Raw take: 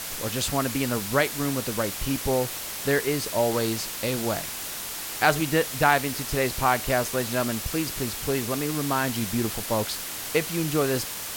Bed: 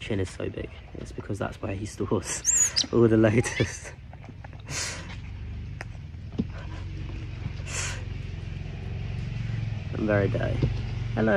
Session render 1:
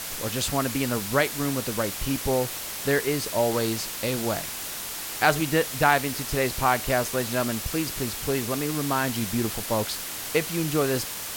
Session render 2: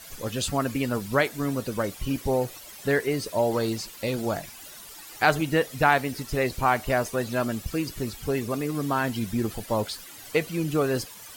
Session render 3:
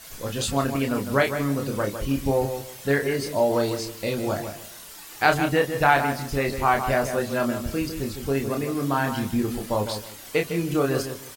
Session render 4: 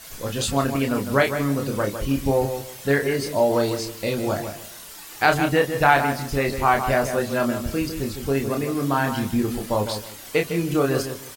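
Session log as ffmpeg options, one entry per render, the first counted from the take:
ffmpeg -i in.wav -af anull out.wav
ffmpeg -i in.wav -af "afftdn=noise_reduction=14:noise_floor=-34" out.wav
ffmpeg -i in.wav -filter_complex "[0:a]asplit=2[link_01][link_02];[link_02]adelay=29,volume=-4.5dB[link_03];[link_01][link_03]amix=inputs=2:normalize=0,asplit=2[link_04][link_05];[link_05]adelay=155,lowpass=frequency=2100:poles=1,volume=-8dB,asplit=2[link_06][link_07];[link_07]adelay=155,lowpass=frequency=2100:poles=1,volume=0.24,asplit=2[link_08][link_09];[link_09]adelay=155,lowpass=frequency=2100:poles=1,volume=0.24[link_10];[link_04][link_06][link_08][link_10]amix=inputs=4:normalize=0" out.wav
ffmpeg -i in.wav -af "volume=2dB,alimiter=limit=-3dB:level=0:latency=1" out.wav

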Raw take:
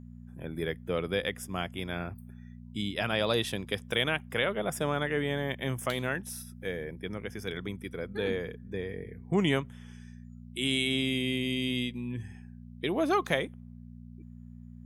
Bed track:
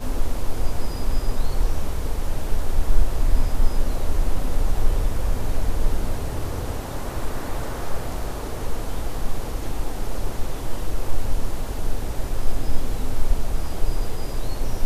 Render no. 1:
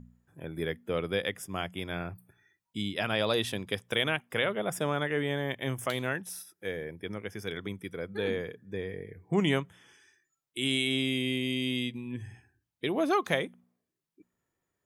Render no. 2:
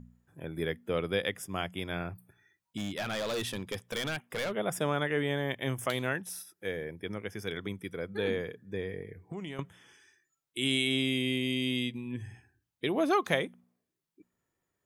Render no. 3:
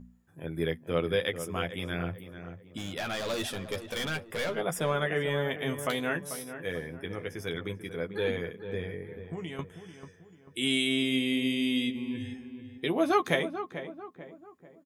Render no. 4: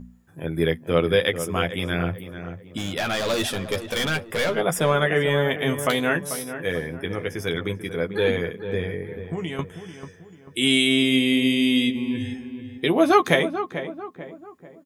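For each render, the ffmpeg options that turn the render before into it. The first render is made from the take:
ffmpeg -i in.wav -af "bandreject=frequency=60:width_type=h:width=4,bandreject=frequency=120:width_type=h:width=4,bandreject=frequency=180:width_type=h:width=4,bandreject=frequency=240:width_type=h:width=4" out.wav
ffmpeg -i in.wav -filter_complex "[0:a]asettb=1/sr,asplit=3[link_01][link_02][link_03];[link_01]atrim=end=2.774[link_04];[link_02]atrim=start=2.77:end=4.52,asetpts=PTS-STARTPTS,afade=type=in:duration=0.004:curve=qsin,afade=type=out:start_time=1.746:duration=0.004:curve=qsin,volume=30dB,asoftclip=hard,volume=-30dB[link_05];[link_03]atrim=start=4.516[link_06];[link_04][link_05]acrossfade=duration=0.004:curve1=hsin:curve2=qsin[link_07];[link_07][link_06]acrossfade=duration=0.004:curve1=qsin:curve2=hsin,asettb=1/sr,asplit=3[link_08][link_09][link_10];[link_08]atrim=end=9.014[link_11];[link_09]atrim=start=9.01:end=9.59,asetpts=PTS-STARTPTS,afade=type=in:duration=0.004:curve=qsin,afade=type=out:start_time=0.576:duration=0.004:curve=qsin,acompressor=threshold=-36dB:ratio=8:attack=3.2:release=140:knee=1:detection=peak[link_12];[link_10]atrim=start=9.586[link_13];[link_11][link_12]acrossfade=duration=0.004:curve1=hsin:curve2=qsin[link_14];[link_14][link_13]acrossfade=duration=0.004:curve1=qsin:curve2=hsin" out.wav
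ffmpeg -i in.wav -filter_complex "[0:a]asplit=2[link_01][link_02];[link_02]adelay=12,volume=-5dB[link_03];[link_01][link_03]amix=inputs=2:normalize=0,asplit=2[link_04][link_05];[link_05]adelay=441,lowpass=frequency=1700:poles=1,volume=-10dB,asplit=2[link_06][link_07];[link_07]adelay=441,lowpass=frequency=1700:poles=1,volume=0.43,asplit=2[link_08][link_09];[link_09]adelay=441,lowpass=frequency=1700:poles=1,volume=0.43,asplit=2[link_10][link_11];[link_11]adelay=441,lowpass=frequency=1700:poles=1,volume=0.43,asplit=2[link_12][link_13];[link_13]adelay=441,lowpass=frequency=1700:poles=1,volume=0.43[link_14];[link_04][link_06][link_08][link_10][link_12][link_14]amix=inputs=6:normalize=0" out.wav
ffmpeg -i in.wav -af "volume=8.5dB,alimiter=limit=-2dB:level=0:latency=1" out.wav

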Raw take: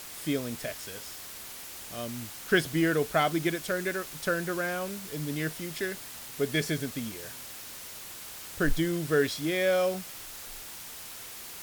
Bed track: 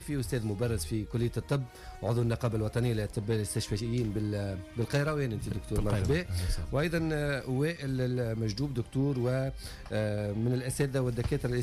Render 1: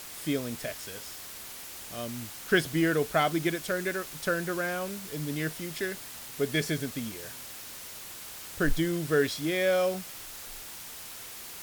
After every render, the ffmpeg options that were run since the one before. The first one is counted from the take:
ffmpeg -i in.wav -af anull out.wav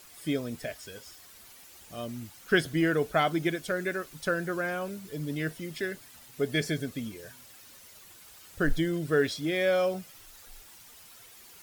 ffmpeg -i in.wav -af "afftdn=noise_reduction=11:noise_floor=-43" out.wav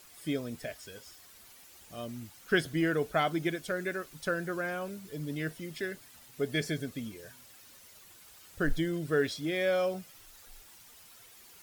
ffmpeg -i in.wav -af "volume=-3dB" out.wav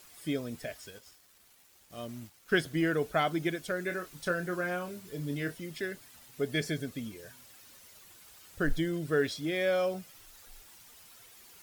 ffmpeg -i in.wav -filter_complex "[0:a]asettb=1/sr,asplit=3[link_01][link_02][link_03];[link_01]atrim=end=0.904[link_04];[link_02]atrim=start=0.9:end=2.75,asetpts=PTS-STARTPTS,afade=type=in:duration=0.004:curve=qsin,afade=type=out:start_time=1.846:duration=0.004:curve=qsin,aeval=exprs='sgn(val(0))*max(abs(val(0))-0.00158,0)':channel_layout=same[link_05];[link_03]atrim=start=2.746[link_06];[link_04][link_05]acrossfade=duration=0.004:curve1=hsin:curve2=qsin[link_07];[link_07][link_06]acrossfade=duration=0.004:curve1=qsin:curve2=hsin,asettb=1/sr,asplit=3[link_08][link_09][link_10];[link_08]atrim=end=3.874[link_11];[link_09]atrim=start=3.87:end=5.55,asetpts=PTS-STARTPTS,afade=type=in:duration=0.004:curve=qsin,afade=type=out:start_time=1.676:duration=0.004:curve=qsin,asplit=2[link_12][link_13];[link_13]adelay=28,volume=-7.5dB[link_14];[link_12][link_14]amix=inputs=2:normalize=0,atrim=end_sample=74088[link_15];[link_10]atrim=start=5.546[link_16];[link_11][link_15]acrossfade=duration=0.004:curve1=hsin:curve2=qsin[link_17];[link_17][link_16]acrossfade=duration=0.004:curve1=qsin:curve2=hsin" out.wav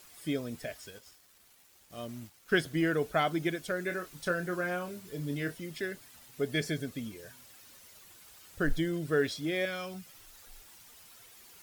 ffmpeg -i in.wav -filter_complex "[0:a]asettb=1/sr,asplit=3[link_01][link_02][link_03];[link_01]atrim=end=9.654[link_04];[link_02]atrim=start=9.65:end=10.06,asetpts=PTS-STARTPTS,afade=type=in:duration=0.004:curve=qsin,afade=type=out:start_time=0.406:duration=0.004:curve=qsin,equalizer=frequency=530:width_type=o:width=1.1:gain=-14.5[link_05];[link_03]atrim=start=10.056[link_06];[link_04][link_05]acrossfade=duration=0.004:curve1=hsin:curve2=qsin[link_07];[link_07][link_06]acrossfade=duration=0.004:curve1=qsin:curve2=hsin" out.wav

